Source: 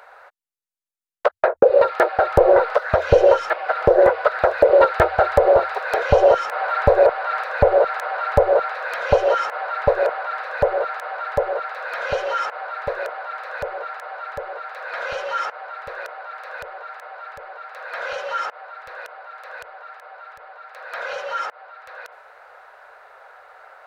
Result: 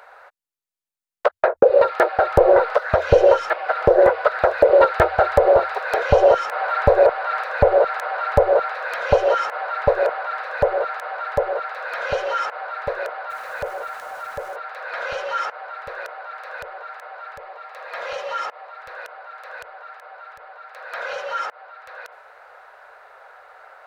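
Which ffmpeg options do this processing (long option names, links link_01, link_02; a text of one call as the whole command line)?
ffmpeg -i in.wav -filter_complex "[0:a]asettb=1/sr,asplit=3[link_01][link_02][link_03];[link_01]atrim=end=13.304[link_04];[link_02]atrim=start=13.3:end=14.56,asetpts=PTS-STARTPTS,afade=type=in:duration=0.004:curve=qsin,afade=type=out:start_time=1.256:duration=0.004:curve=qsin,aeval=exprs='val(0)*gte(abs(val(0)),0.0075)':channel_layout=same[link_05];[link_03]atrim=start=14.556[link_06];[link_04][link_05]acrossfade=duration=0.004:curve1=hsin:curve2=qsin[link_07];[link_07][link_06]acrossfade=duration=0.004:curve1=qsin:curve2=hsin,asettb=1/sr,asplit=3[link_08][link_09][link_10];[link_08]atrim=end=17.384[link_11];[link_09]atrim=start=17.38:end=18.79,asetpts=PTS-STARTPTS,afade=type=in:duration=0.004:curve=qsin,afade=type=out:start_time=1.406:duration=0.004:curve=qsin,bandreject=frequency=1500:width=7.9[link_12];[link_10]atrim=start=18.786[link_13];[link_11][link_12]acrossfade=duration=0.004:curve1=hsin:curve2=qsin[link_14];[link_14][link_13]acrossfade=duration=0.004:curve1=qsin:curve2=hsin" out.wav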